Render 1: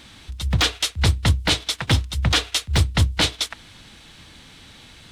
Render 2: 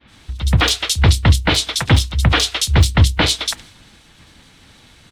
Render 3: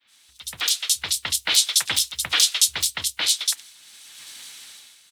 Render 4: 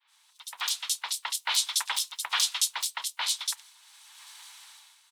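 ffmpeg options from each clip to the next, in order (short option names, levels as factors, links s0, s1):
-filter_complex "[0:a]agate=range=0.0224:threshold=0.0112:ratio=3:detection=peak,acrossover=split=3300[s0][s1];[s1]adelay=70[s2];[s0][s2]amix=inputs=2:normalize=0,volume=2.11"
-af "aderivative,dynaudnorm=f=100:g=11:m=6.31,volume=0.891"
-af "highpass=f=940:t=q:w=4.7,volume=0.376"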